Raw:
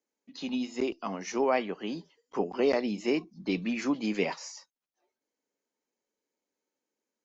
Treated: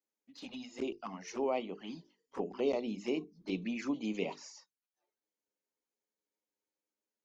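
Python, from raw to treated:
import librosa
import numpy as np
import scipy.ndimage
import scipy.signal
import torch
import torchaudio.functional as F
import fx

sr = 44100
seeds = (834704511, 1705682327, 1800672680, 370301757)

y = fx.hum_notches(x, sr, base_hz=50, count=9)
y = fx.env_flanger(y, sr, rest_ms=9.7, full_db=-27.5)
y = y * 10.0 ** (-5.0 / 20.0)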